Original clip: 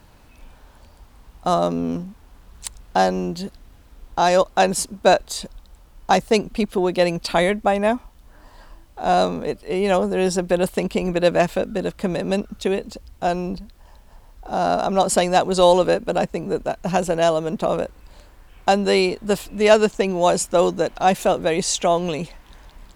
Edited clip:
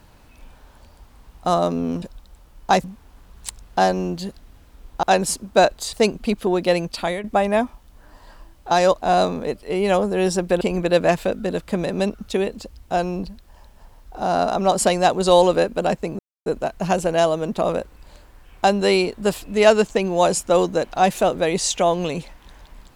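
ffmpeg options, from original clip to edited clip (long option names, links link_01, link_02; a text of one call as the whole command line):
ffmpeg -i in.wav -filter_complex "[0:a]asplit=10[link_01][link_02][link_03][link_04][link_05][link_06][link_07][link_08][link_09][link_10];[link_01]atrim=end=2.022[link_11];[link_02]atrim=start=5.418:end=6.242[link_12];[link_03]atrim=start=2.018:end=4.212[link_13];[link_04]atrim=start=4.518:end=5.422[link_14];[link_05]atrim=start=6.238:end=7.55,asetpts=PTS-STARTPTS,afade=type=out:start_time=0.632:duration=0.68:curve=qsin:silence=0.251189[link_15];[link_06]atrim=start=7.55:end=9.022,asetpts=PTS-STARTPTS,afade=type=in:duration=0.004:curve=hsin:silence=0.251189[link_16];[link_07]atrim=start=4.208:end=4.522[link_17];[link_08]atrim=start=9.018:end=10.612[link_18];[link_09]atrim=start=10.918:end=16.5,asetpts=PTS-STARTPTS,afade=type=out:start_time=5.578:duration=0.004:curve=hsin,apad=pad_dur=0.27[link_19];[link_10]atrim=start=16.5,asetpts=PTS-STARTPTS,afade=type=in:duration=0.004:curve=hsin[link_20];[link_11][link_12]acrossfade=duration=0.004:curve1=hsin:curve2=hsin[link_21];[link_21][link_13]acrossfade=duration=0.004:curve1=hsin:curve2=hsin[link_22];[link_22][link_14]acrossfade=duration=0.004:curve1=hsin:curve2=hsin[link_23];[link_15][link_16]concat=n=2:v=0:a=1[link_24];[link_23][link_24]acrossfade=duration=0.004:curve1=hsin:curve2=hsin[link_25];[link_25][link_17]acrossfade=duration=0.004:curve1=hsin:curve2=hsin[link_26];[link_26][link_18]acrossfade=duration=0.004:curve1=hsin:curve2=hsin[link_27];[link_19][link_20]concat=n=2:v=0:a=1[link_28];[link_27][link_28]acrossfade=duration=0.004:curve1=hsin:curve2=hsin" out.wav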